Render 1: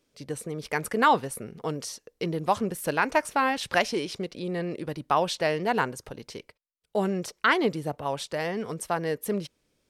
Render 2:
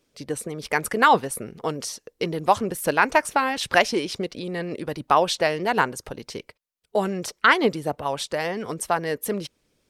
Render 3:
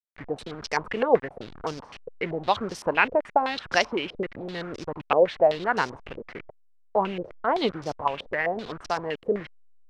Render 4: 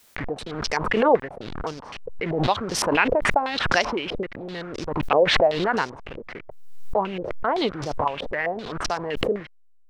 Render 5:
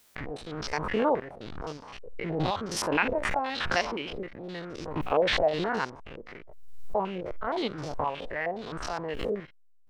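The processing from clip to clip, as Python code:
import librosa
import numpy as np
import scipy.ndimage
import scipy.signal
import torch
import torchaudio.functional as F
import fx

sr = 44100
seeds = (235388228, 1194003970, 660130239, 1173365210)

y1 = fx.hpss(x, sr, part='percussive', gain_db=6)
y2 = fx.delta_hold(y1, sr, step_db=-32.5)
y2 = fx.filter_held_lowpass(y2, sr, hz=7.8, low_hz=510.0, high_hz=5400.0)
y2 = F.gain(torch.from_numpy(y2), -5.0).numpy()
y3 = fx.pre_swell(y2, sr, db_per_s=41.0)
y4 = fx.spec_steps(y3, sr, hold_ms=50)
y4 = F.gain(torch.from_numpy(y4), -4.0).numpy()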